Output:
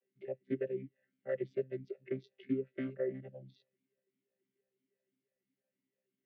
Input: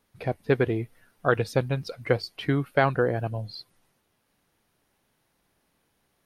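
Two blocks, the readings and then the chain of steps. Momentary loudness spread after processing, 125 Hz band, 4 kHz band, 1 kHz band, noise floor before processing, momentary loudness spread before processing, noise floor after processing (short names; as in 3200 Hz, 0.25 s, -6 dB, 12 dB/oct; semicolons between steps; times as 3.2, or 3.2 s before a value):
12 LU, -21.5 dB, under -25 dB, under -30 dB, -73 dBFS, 11 LU, under -85 dBFS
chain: chord vocoder bare fifth, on C3; vowel sweep e-i 3 Hz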